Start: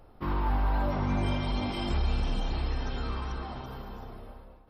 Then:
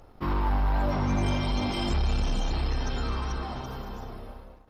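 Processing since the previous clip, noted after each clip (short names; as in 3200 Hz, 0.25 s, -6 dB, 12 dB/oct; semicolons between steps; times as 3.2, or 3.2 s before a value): bell 6500 Hz +12.5 dB 0.42 oct; sample leveller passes 1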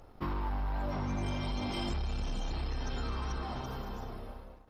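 compressor, threshold -29 dBFS, peak gain reduction 7.5 dB; gain -2.5 dB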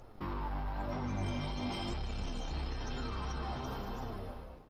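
limiter -31.5 dBFS, peak gain reduction 6 dB; flange 1 Hz, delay 7.6 ms, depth 6.6 ms, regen +45%; frequency-shifting echo 0.152 s, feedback 63%, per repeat -91 Hz, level -17 dB; gain +5 dB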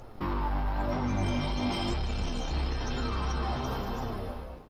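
doubler 17 ms -14 dB; gain +7 dB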